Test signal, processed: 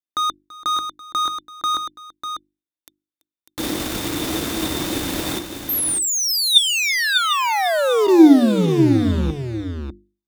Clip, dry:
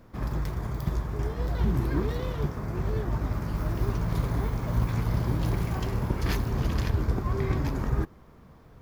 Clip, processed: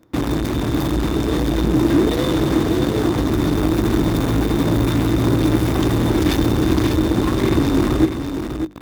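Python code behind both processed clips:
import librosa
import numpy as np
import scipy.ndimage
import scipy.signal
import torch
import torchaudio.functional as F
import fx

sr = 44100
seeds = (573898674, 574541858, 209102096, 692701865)

p1 = fx.notch(x, sr, hz=400.0, q=12.0)
p2 = fx.fuzz(p1, sr, gain_db=52.0, gate_db=-44.0)
p3 = p1 + F.gain(torch.from_numpy(p2), -3.0).numpy()
p4 = scipy.signal.sosfilt(scipy.signal.butter(2, 43.0, 'highpass', fs=sr, output='sos'), p3)
p5 = fx.hum_notches(p4, sr, base_hz=50, count=7)
p6 = fx.small_body(p5, sr, hz=(310.0, 3600.0), ring_ms=40, db=16)
p7 = p6 + fx.echo_multitap(p6, sr, ms=(334, 597), db=(-19.0, -7.5), dry=0)
y = F.gain(torch.from_numpy(p7), -5.5).numpy()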